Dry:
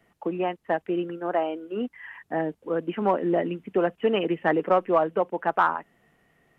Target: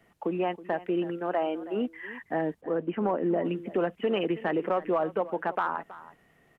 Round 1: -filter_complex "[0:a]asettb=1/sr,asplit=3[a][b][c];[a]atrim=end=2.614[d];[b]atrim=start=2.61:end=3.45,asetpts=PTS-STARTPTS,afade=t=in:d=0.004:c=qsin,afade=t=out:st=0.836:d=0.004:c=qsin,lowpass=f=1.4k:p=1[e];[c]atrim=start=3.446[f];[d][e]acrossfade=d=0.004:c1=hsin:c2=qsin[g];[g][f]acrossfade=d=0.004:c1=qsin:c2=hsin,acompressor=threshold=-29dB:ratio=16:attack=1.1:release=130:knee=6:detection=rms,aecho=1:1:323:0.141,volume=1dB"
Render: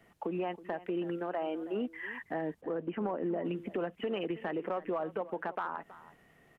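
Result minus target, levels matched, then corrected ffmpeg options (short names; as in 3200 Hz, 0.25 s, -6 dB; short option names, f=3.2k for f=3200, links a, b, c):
compressor: peak gain reduction +8 dB
-filter_complex "[0:a]asettb=1/sr,asplit=3[a][b][c];[a]atrim=end=2.614[d];[b]atrim=start=2.61:end=3.45,asetpts=PTS-STARTPTS,afade=t=in:d=0.004:c=qsin,afade=t=out:st=0.836:d=0.004:c=qsin,lowpass=f=1.4k:p=1[e];[c]atrim=start=3.446[f];[d][e]acrossfade=d=0.004:c1=hsin:c2=qsin[g];[g][f]acrossfade=d=0.004:c1=qsin:c2=hsin,acompressor=threshold=-20.5dB:ratio=16:attack=1.1:release=130:knee=6:detection=rms,aecho=1:1:323:0.141,volume=1dB"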